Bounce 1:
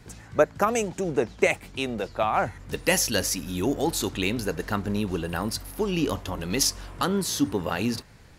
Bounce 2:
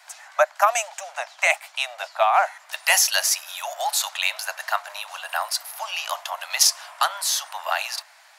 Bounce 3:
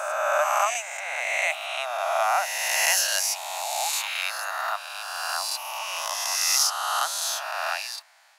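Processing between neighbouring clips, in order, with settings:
Butterworth high-pass 620 Hz 96 dB per octave; level +6.5 dB
peak hold with a rise ahead of every peak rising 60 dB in 2.28 s; level −9 dB

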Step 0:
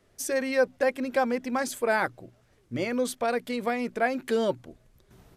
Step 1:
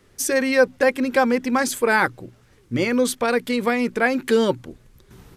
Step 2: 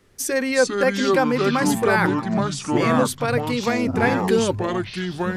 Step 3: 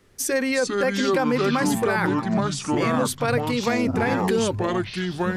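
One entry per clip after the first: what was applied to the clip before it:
parametric band 650 Hz −11 dB 0.31 octaves; level +9 dB
delay with pitch and tempo change per echo 304 ms, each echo −5 semitones, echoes 3; level −2 dB
brickwall limiter −12.5 dBFS, peak gain reduction 8 dB

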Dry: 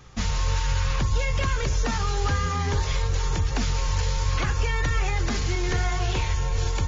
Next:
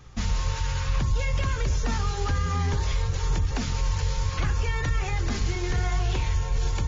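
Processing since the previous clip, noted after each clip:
low-shelf EQ 230 Hz +6 dB
hum removal 45.61 Hz, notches 13
brickwall limiter −13.5 dBFS, peak gain reduction 5 dB
level −3 dB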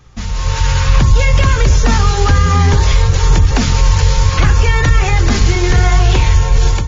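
automatic gain control gain up to 12 dB
level +3.5 dB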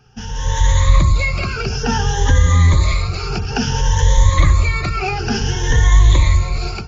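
rippled gain that drifts along the octave scale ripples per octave 1.1, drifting +0.57 Hz, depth 18 dB
level −7.5 dB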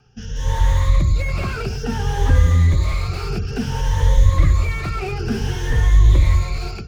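rotating-speaker cabinet horn 1.2 Hz
slew-rate limiting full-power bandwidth 83 Hz
level −1 dB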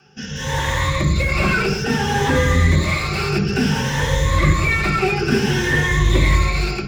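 convolution reverb RT60 0.65 s, pre-delay 3 ms, DRR −1 dB
level +6 dB

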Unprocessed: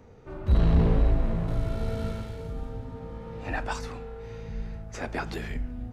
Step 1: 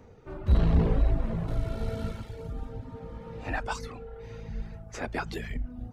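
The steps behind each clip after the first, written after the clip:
reverb reduction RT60 0.71 s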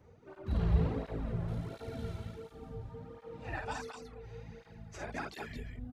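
loudspeakers that aren't time-aligned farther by 18 metres −4 dB, 75 metres −5 dB
through-zero flanger with one copy inverted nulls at 1.4 Hz, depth 4.5 ms
level −5.5 dB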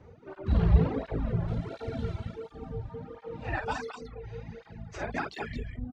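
reverb reduction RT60 0.72 s
high-frequency loss of the air 93 metres
level +8 dB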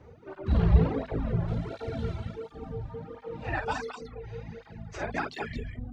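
mains-hum notches 50/100/150/200/250 Hz
level +1.5 dB

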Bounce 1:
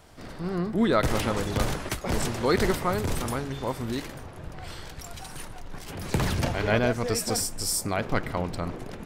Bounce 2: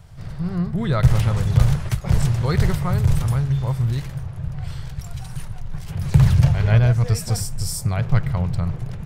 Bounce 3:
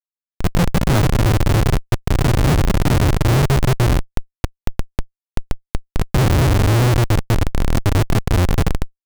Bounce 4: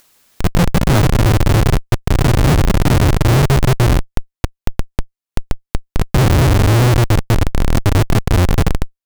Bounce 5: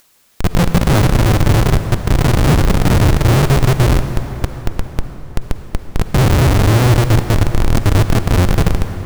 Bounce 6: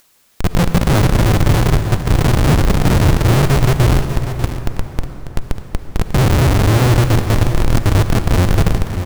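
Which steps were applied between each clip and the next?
low shelf with overshoot 190 Hz +11.5 dB, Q 3; level −1.5 dB
comparator with hysteresis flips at −19 dBFS; level +6 dB
upward compression, threshold −26 dBFS; level +3 dB
convolution reverb RT60 4.3 s, pre-delay 38 ms, DRR 8.5 dB
single-tap delay 594 ms −11 dB; level −1 dB

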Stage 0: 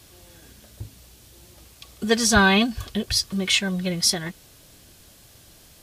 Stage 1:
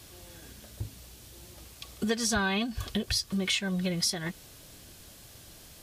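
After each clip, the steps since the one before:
downward compressor 4 to 1, threshold −27 dBFS, peak gain reduction 13 dB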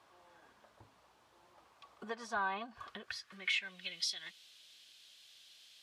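band-pass filter sweep 1,000 Hz → 3,400 Hz, 0:02.71–0:04.03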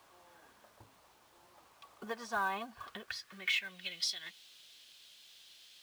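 log-companded quantiser 6 bits
level +1.5 dB

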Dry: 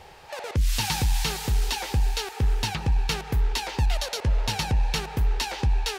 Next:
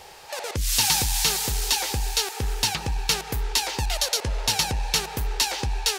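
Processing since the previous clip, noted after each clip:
bass and treble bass −7 dB, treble +9 dB
level +2 dB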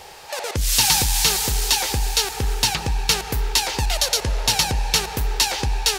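convolution reverb RT60 5.0 s, pre-delay 32 ms, DRR 17 dB
level +4 dB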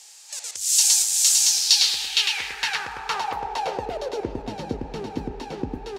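single-tap delay 565 ms −3.5 dB
band-pass filter sweep 7,300 Hz → 280 Hz, 0:01.34–0:04.44
level +5.5 dB

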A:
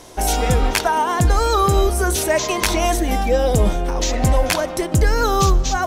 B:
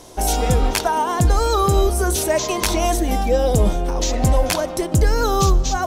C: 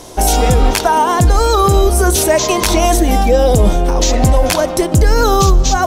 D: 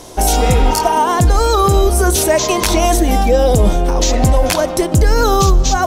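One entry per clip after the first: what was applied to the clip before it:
parametric band 1,900 Hz −5 dB 1.3 octaves
brickwall limiter −10 dBFS, peak gain reduction 4 dB; level +8 dB
healed spectral selection 0:00.51–0:00.93, 850–4,200 Hz both; level −1 dB

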